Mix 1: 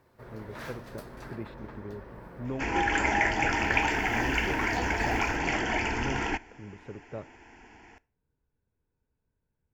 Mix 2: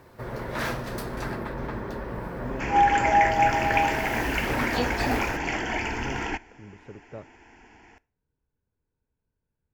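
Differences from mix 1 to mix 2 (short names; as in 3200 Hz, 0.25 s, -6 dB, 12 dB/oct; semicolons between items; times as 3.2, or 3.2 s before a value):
speech: send -10.0 dB; first sound +12.0 dB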